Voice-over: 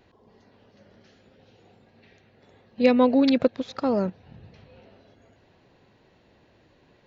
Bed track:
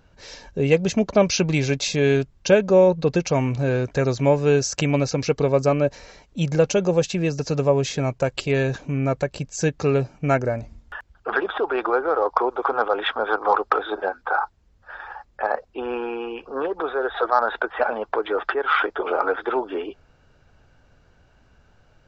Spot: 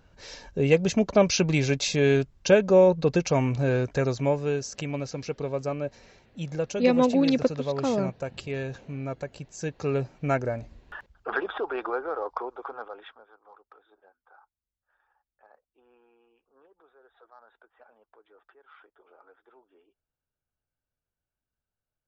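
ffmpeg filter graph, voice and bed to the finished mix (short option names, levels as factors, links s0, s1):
-filter_complex "[0:a]adelay=4000,volume=0.75[s0];[1:a]volume=1.41,afade=t=out:st=3.8:d=0.82:silence=0.375837,afade=t=in:st=9.63:d=0.42:silence=0.530884,afade=t=out:st=11.3:d=1.97:silence=0.0334965[s1];[s0][s1]amix=inputs=2:normalize=0"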